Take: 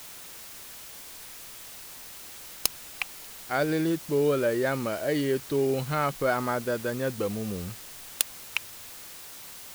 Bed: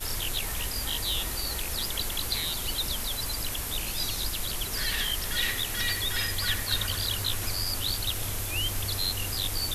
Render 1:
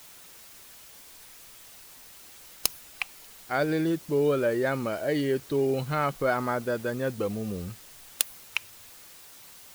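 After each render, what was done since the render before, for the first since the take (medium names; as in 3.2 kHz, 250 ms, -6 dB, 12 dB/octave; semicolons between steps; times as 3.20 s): noise reduction 6 dB, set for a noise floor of -44 dBFS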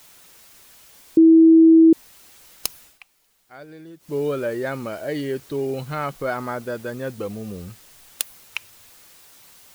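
1.17–1.93 s: bleep 325 Hz -7.5 dBFS; 2.83–4.15 s: dip -15.5 dB, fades 0.16 s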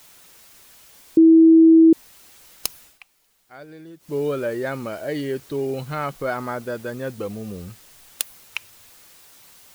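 no audible change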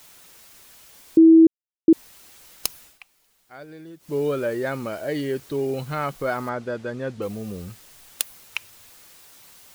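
1.47–1.88 s: mute; 6.49–7.22 s: distance through air 87 m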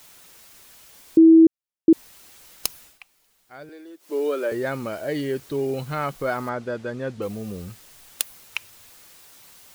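3.69–4.52 s: steep high-pass 280 Hz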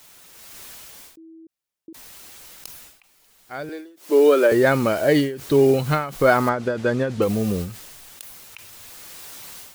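level rider gain up to 10.5 dB; endings held to a fixed fall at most 100 dB/s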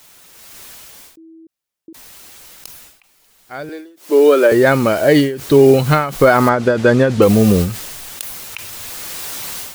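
gain riding 2 s; loudness maximiser +7.5 dB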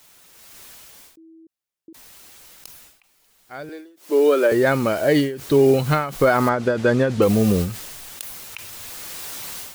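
trim -6 dB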